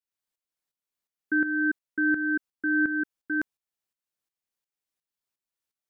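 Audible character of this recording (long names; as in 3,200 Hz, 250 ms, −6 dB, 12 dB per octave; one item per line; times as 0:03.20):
tremolo saw up 2.8 Hz, depth 70%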